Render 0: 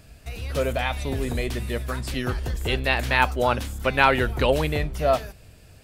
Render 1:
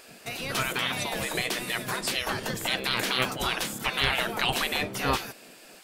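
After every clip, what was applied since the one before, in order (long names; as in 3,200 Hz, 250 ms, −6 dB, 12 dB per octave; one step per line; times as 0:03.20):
gate on every frequency bin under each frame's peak −15 dB weak
in parallel at +2 dB: brickwall limiter −22.5 dBFS, peak gain reduction 11 dB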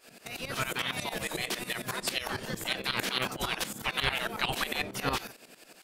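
shaped tremolo saw up 11 Hz, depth 85%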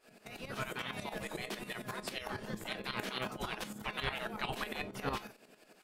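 high-shelf EQ 2,300 Hz −9 dB
tuned comb filter 210 Hz, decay 0.19 s, harmonics all, mix 60%
level +1.5 dB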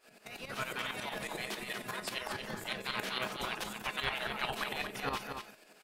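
low-shelf EQ 490 Hz −7 dB
single-tap delay 234 ms −6.5 dB
level +3 dB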